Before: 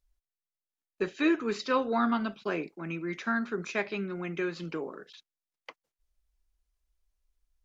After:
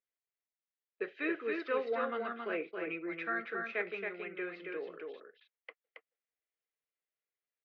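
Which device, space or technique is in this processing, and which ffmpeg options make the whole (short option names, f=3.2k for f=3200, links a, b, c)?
phone earpiece: -filter_complex "[0:a]asettb=1/sr,asplit=3[a][b][c];[a]atrim=end=2.494[d];[b]atrim=start=2.49:end=3.65,asetpts=PTS-STARTPTS,afade=t=in:d=0.004:c=qsin,afade=t=out:st=1.156:d=0.004:c=qsin,aecho=1:1:6:0.91,atrim=end_sample=51156[e];[c]atrim=start=3.646[f];[d][e]acrossfade=d=0.004:c1=hsin:c2=qsin[g];[g][f]acrossfade=d=0.004:c1=qsin:c2=hsin,highpass=440,equalizer=f=460:t=q:w=4:g=8,equalizer=f=940:t=q:w=4:g=-10,equalizer=f=2k:t=q:w=4:g=6,lowpass=f=3.1k:w=0.5412,lowpass=f=3.1k:w=1.3066,aecho=1:1:274:0.631,volume=-6.5dB"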